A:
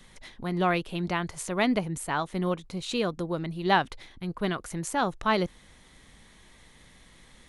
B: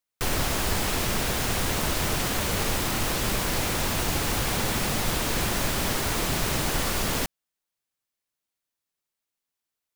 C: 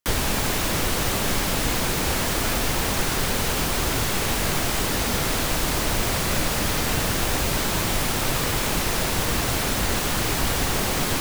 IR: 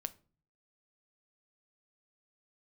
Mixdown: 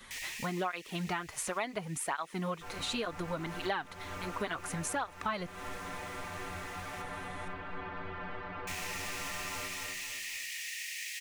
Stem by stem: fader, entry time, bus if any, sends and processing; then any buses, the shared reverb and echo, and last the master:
-0.5 dB, 0.00 s, no send, no echo send, high shelf 7000 Hz +9.5 dB; tape flanging out of phase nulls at 0.69 Hz, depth 6.8 ms
-10.0 dB, 2.40 s, no send, echo send -4.5 dB, Bessel low-pass 1800 Hz, order 4; metallic resonator 89 Hz, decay 0.31 s, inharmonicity 0.008
-13.5 dB, 0.05 s, muted 7.02–8.67, no send, echo send -23 dB, rippled Chebyshev high-pass 1800 Hz, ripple 6 dB; auto duck -13 dB, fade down 1.80 s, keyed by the first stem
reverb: off
echo: feedback echo 0.258 s, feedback 38%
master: bell 1400 Hz +10 dB 2.4 oct; compressor 5:1, threshold -33 dBFS, peak gain reduction 17 dB

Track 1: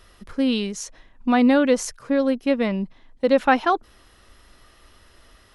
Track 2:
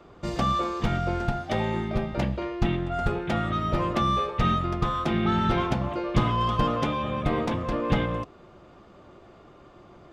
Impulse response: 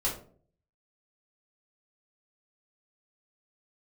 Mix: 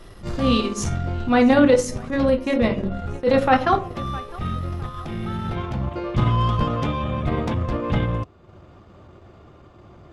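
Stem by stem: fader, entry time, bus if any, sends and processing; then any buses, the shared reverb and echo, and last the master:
-0.5 dB, 0.00 s, send -6 dB, echo send -19 dB, dry
+2.0 dB, 0.00 s, no send, no echo send, bell 84 Hz +12 dB 1.4 oct; auto duck -8 dB, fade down 1.50 s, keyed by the first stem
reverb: on, RT60 0.50 s, pre-delay 3 ms
echo: feedback echo 0.659 s, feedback 44%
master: transient shaper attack -10 dB, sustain -6 dB

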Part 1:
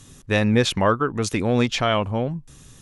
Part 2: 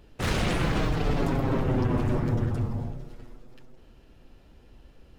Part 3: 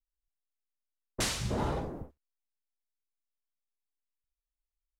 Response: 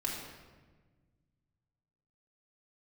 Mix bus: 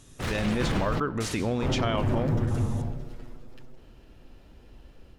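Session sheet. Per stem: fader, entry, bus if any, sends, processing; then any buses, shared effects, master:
-8.0 dB, 0.00 s, send -19.5 dB, ending taper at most 210 dB/s
-4.5 dB, 0.00 s, muted 1–1.62, send -24 dB, dry
-14.0 dB, 0.00 s, send -3.5 dB, dry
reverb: on, RT60 1.4 s, pre-delay 3 ms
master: AGC gain up to 6 dB; limiter -17.5 dBFS, peak gain reduction 10 dB

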